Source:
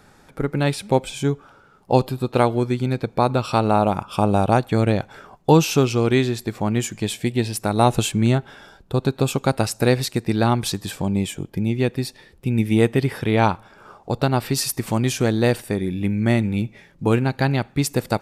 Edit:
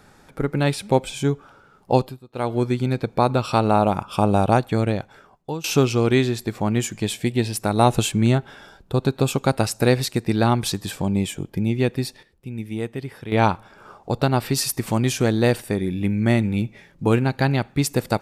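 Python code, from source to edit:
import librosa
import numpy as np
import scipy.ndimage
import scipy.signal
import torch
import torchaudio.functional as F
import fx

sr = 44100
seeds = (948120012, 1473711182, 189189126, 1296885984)

y = fx.edit(x, sr, fx.fade_down_up(start_s=1.92, length_s=0.69, db=-22.0, fade_s=0.29),
    fx.fade_out_to(start_s=4.52, length_s=1.12, floor_db=-21.0),
    fx.fade_down_up(start_s=12.06, length_s=1.43, db=-11.0, fade_s=0.17, curve='log'), tone=tone)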